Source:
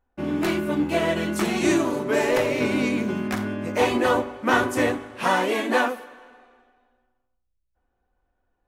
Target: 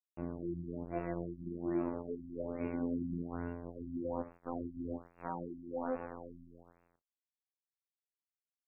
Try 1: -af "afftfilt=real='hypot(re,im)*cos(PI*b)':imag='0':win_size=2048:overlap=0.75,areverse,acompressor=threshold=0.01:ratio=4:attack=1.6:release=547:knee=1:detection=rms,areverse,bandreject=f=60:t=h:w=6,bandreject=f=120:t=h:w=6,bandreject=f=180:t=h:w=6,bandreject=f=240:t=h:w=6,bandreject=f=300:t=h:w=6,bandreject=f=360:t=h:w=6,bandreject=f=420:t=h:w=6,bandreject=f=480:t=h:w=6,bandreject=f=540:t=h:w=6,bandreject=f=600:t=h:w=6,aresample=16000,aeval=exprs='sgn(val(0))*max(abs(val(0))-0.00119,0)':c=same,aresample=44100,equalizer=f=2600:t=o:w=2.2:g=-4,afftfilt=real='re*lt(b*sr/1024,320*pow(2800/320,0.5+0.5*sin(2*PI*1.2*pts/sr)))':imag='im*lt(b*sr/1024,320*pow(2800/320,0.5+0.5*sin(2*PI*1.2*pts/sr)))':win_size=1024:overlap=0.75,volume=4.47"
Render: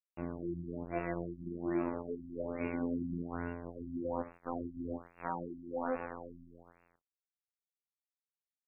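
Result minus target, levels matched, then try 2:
2 kHz band +5.5 dB
-af "afftfilt=real='hypot(re,im)*cos(PI*b)':imag='0':win_size=2048:overlap=0.75,areverse,acompressor=threshold=0.01:ratio=4:attack=1.6:release=547:knee=1:detection=rms,areverse,bandreject=f=60:t=h:w=6,bandreject=f=120:t=h:w=6,bandreject=f=180:t=h:w=6,bandreject=f=240:t=h:w=6,bandreject=f=300:t=h:w=6,bandreject=f=360:t=h:w=6,bandreject=f=420:t=h:w=6,bandreject=f=480:t=h:w=6,bandreject=f=540:t=h:w=6,bandreject=f=600:t=h:w=6,aresample=16000,aeval=exprs='sgn(val(0))*max(abs(val(0))-0.00119,0)':c=same,aresample=44100,equalizer=f=2600:t=o:w=2.2:g=-13,afftfilt=real='re*lt(b*sr/1024,320*pow(2800/320,0.5+0.5*sin(2*PI*1.2*pts/sr)))':imag='im*lt(b*sr/1024,320*pow(2800/320,0.5+0.5*sin(2*PI*1.2*pts/sr)))':win_size=1024:overlap=0.75,volume=4.47"

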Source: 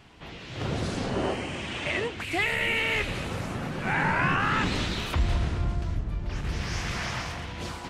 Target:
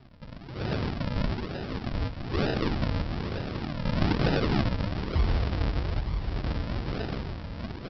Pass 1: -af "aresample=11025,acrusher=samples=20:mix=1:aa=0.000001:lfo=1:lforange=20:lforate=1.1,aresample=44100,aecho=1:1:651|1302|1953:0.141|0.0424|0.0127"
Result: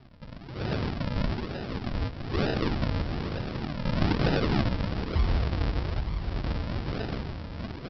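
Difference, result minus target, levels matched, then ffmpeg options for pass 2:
echo 284 ms early
-af "aresample=11025,acrusher=samples=20:mix=1:aa=0.000001:lfo=1:lforange=20:lforate=1.1,aresample=44100,aecho=1:1:935|1870|2805:0.141|0.0424|0.0127"

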